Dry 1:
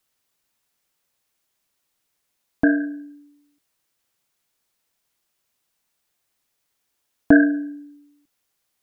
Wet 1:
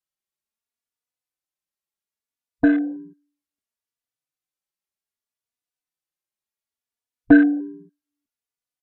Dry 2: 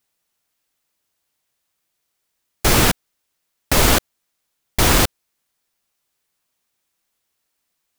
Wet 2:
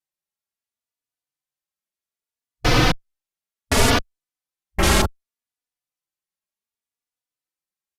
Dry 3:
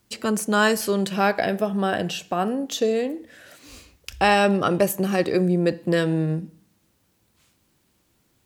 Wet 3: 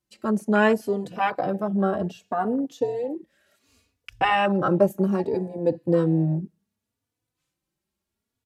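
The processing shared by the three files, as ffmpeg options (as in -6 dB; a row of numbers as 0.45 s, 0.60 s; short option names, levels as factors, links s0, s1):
-filter_complex "[0:a]afwtdn=0.0562,aresample=32000,aresample=44100,asplit=2[s0][s1];[s1]adelay=3.4,afreqshift=0.66[s2];[s0][s2]amix=inputs=2:normalize=1,volume=1.26"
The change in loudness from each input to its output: +1.5 LU, -3.0 LU, -1.5 LU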